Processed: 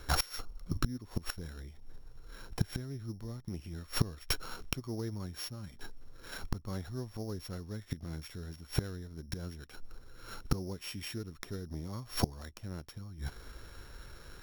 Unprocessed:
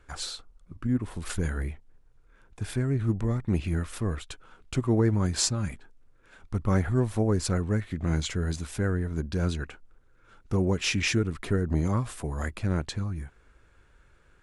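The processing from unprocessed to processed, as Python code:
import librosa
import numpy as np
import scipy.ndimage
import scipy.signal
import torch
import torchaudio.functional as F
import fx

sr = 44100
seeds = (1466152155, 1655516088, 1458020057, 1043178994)

y = np.r_[np.sort(x[:len(x) // 8 * 8].reshape(-1, 8), axis=1).ravel(), x[len(x) // 8 * 8:]]
y = fx.gate_flip(y, sr, shuts_db=-25.0, range_db=-25)
y = y * 10.0 ** (10.0 / 20.0)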